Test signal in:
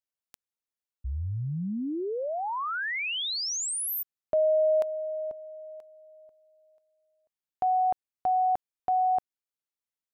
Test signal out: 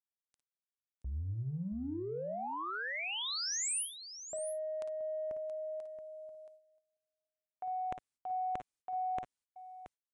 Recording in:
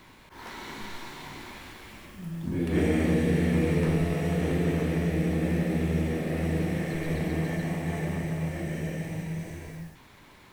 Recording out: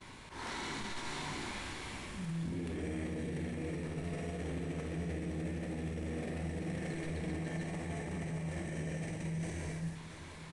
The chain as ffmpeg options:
-filter_complex "[0:a]areverse,acompressor=threshold=0.0112:ratio=10:attack=3.2:release=24:knee=1:detection=peak,areverse,equalizer=f=83:t=o:w=2:g=2.5,asplit=2[s0][s1];[s1]aecho=0:1:54|61|676:0.299|0.158|0.282[s2];[s0][s2]amix=inputs=2:normalize=0,agate=range=0.0631:threshold=0.00158:ratio=16:release=378:detection=peak,highshelf=f=6900:g=7.5,aresample=22050,aresample=44100"

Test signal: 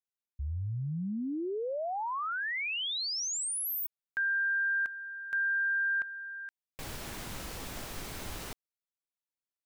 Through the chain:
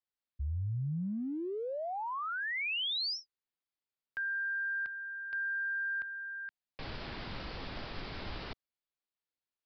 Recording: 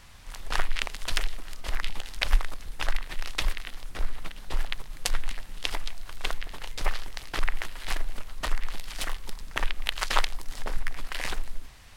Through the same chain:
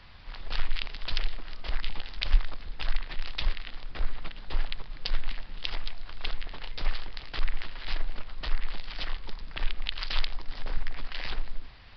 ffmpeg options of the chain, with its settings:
-filter_complex "[0:a]acrossover=split=150|2800[s0][s1][s2];[s1]acompressor=threshold=0.0178:ratio=5:attack=0.25:release=39:knee=2.83:detection=peak[s3];[s0][s3][s2]amix=inputs=3:normalize=0,aresample=11025,aresample=44100"

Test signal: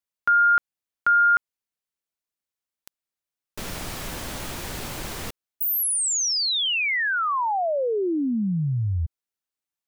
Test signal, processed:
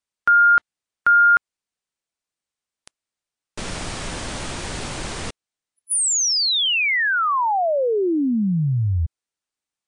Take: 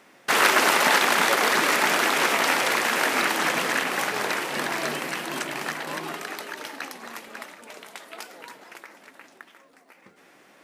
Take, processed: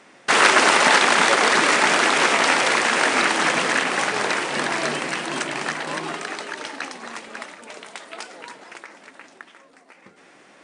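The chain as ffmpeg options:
-af "volume=1.68" -ar 22050 -c:a libmp3lame -b:a 112k

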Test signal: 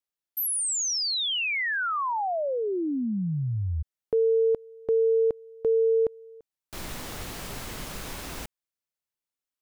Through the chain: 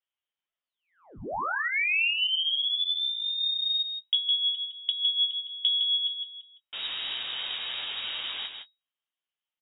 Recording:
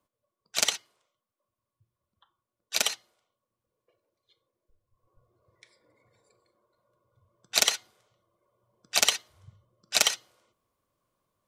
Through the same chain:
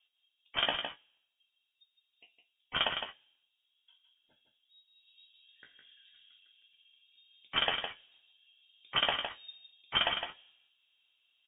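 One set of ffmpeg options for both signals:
-filter_complex "[0:a]equalizer=f=710:w=1.4:g=11.5,acompressor=threshold=0.0316:ratio=6:attack=62:release=122:knee=6:detection=peak,flanger=delay=7.3:depth=8.6:regen=26:speed=0.62:shape=sinusoidal,asplit=2[s0][s1];[s1]adelay=23,volume=0.266[s2];[s0][s2]amix=inputs=2:normalize=0,aecho=1:1:160:0.447,lowpass=f=3200:t=q:w=0.5098,lowpass=f=3200:t=q:w=0.6013,lowpass=f=3200:t=q:w=0.9,lowpass=f=3200:t=q:w=2.563,afreqshift=-3800,volume=1.5"

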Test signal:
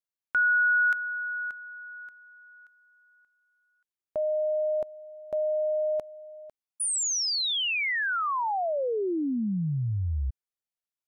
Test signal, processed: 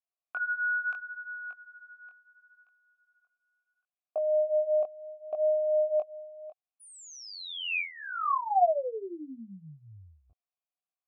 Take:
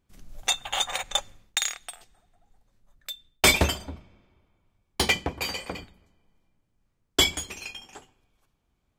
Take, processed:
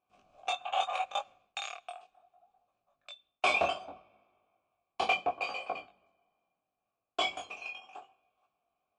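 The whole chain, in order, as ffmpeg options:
-filter_complex "[0:a]apsyclip=5.62,asplit=3[s0][s1][s2];[s0]bandpass=f=730:t=q:w=8,volume=1[s3];[s1]bandpass=f=1090:t=q:w=8,volume=0.501[s4];[s2]bandpass=f=2440:t=q:w=8,volume=0.355[s5];[s3][s4][s5]amix=inputs=3:normalize=0,flanger=delay=19:depth=4.3:speed=0.71,volume=0.668" -ar 22050 -c:a libmp3lame -b:a 80k

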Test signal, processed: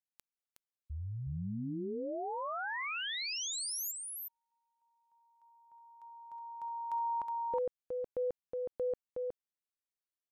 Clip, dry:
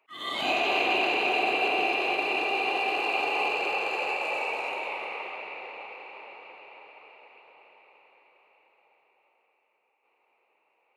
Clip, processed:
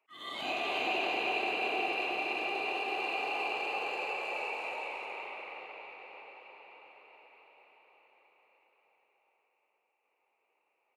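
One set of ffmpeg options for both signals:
-af "aecho=1:1:367:0.668,volume=0.376"

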